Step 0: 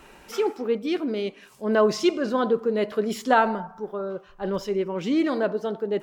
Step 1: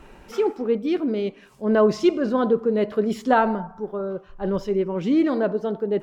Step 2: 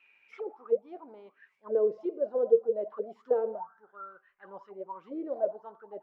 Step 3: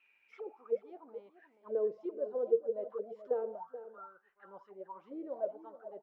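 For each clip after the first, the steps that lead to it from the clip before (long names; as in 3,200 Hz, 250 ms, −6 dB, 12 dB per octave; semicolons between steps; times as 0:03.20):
spectral tilt −2 dB per octave
envelope filter 470–2,600 Hz, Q 13, down, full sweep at −16 dBFS; level +2 dB
single-tap delay 430 ms −13 dB; level −6.5 dB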